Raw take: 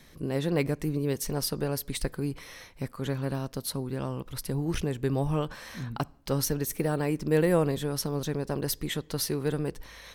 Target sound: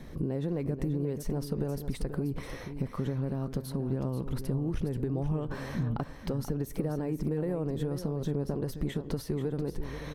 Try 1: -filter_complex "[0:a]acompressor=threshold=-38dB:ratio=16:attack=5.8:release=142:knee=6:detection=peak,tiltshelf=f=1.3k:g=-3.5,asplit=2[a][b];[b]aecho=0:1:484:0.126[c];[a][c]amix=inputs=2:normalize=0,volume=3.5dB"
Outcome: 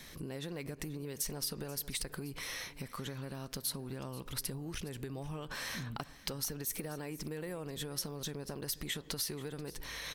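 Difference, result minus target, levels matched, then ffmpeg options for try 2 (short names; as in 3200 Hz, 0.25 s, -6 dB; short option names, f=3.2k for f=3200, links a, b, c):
echo-to-direct -8 dB; 1000 Hz band +2.5 dB
-filter_complex "[0:a]acompressor=threshold=-38dB:ratio=16:attack=5.8:release=142:knee=6:detection=peak,tiltshelf=f=1.3k:g=8.5,asplit=2[a][b];[b]aecho=0:1:484:0.316[c];[a][c]amix=inputs=2:normalize=0,volume=3.5dB"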